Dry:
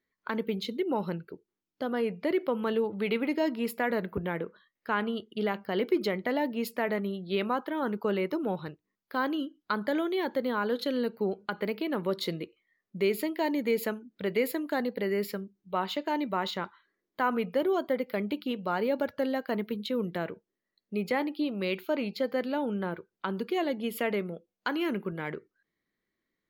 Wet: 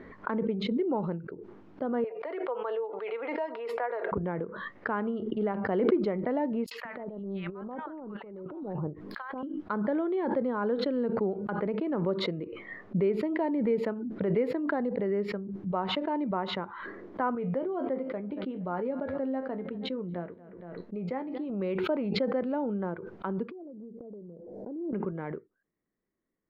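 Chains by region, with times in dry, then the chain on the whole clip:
2.04–4.12 s: Bessel high-pass 700 Hz, order 8 + comb 4.3 ms, depth 45%
6.66–9.43 s: three bands offset in time highs, mids, lows 50/190 ms, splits 1/5.6 kHz + compressor with a negative ratio -37 dBFS, ratio -0.5
17.35–21.50 s: feedback comb 88 Hz, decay 0.18 s, mix 70% + feedback delay 233 ms, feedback 35%, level -22 dB
23.51–24.93 s: zero-crossing glitches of -32 dBFS + inverse Chebyshev low-pass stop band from 1.1 kHz + compression 16:1, threshold -41 dBFS
whole clip: low-pass 1.1 kHz 12 dB/octave; swell ahead of each attack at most 32 dB/s

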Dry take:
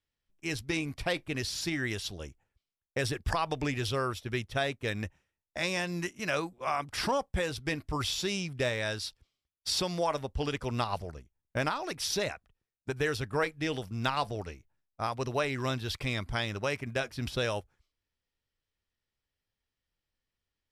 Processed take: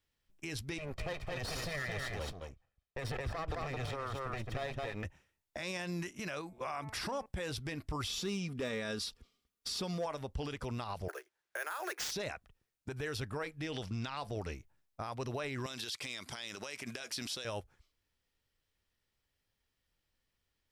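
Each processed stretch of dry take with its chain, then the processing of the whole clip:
0.78–5.05 s: comb filter that takes the minimum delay 1.6 ms + treble shelf 3.5 kHz -12 dB + delay 218 ms -5.5 dB
6.41–7.26 s: band-stop 3.1 kHz, Q 21 + de-hum 218.7 Hz, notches 12 + compression 3:1, threshold -38 dBFS
8.06–10.06 s: comb 4.2 ms, depth 41% + small resonant body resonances 220/390/1200 Hz, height 8 dB, ringing for 30 ms + overload inside the chain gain 19.5 dB
11.08–12.11 s: steep high-pass 340 Hz 96 dB/octave + peaking EQ 1.6 kHz +12 dB 0.57 oct + sample-rate reducer 12 kHz
13.72–14.17 s: low-pass 4.8 kHz + treble shelf 2.8 kHz +11 dB
15.66–17.45 s: high-pass 230 Hz + compression 2:1, threshold -38 dBFS + peaking EQ 7 kHz +14 dB 2.7 oct
whole clip: compression, threshold -36 dBFS; peak limiter -34 dBFS; trim +4.5 dB

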